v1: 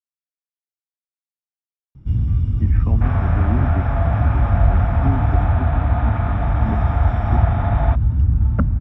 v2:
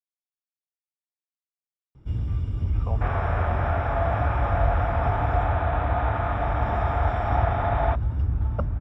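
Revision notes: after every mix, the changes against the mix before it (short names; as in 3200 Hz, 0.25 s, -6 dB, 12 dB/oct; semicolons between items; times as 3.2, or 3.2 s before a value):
speech: add fixed phaser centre 730 Hz, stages 4; master: add resonant low shelf 300 Hz -8 dB, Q 1.5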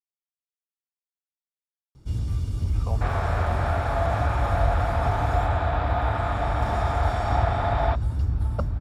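master: remove polynomial smoothing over 25 samples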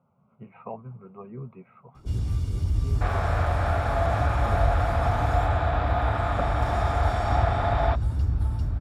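speech: entry -2.20 s; second sound: add notch 920 Hz, Q 18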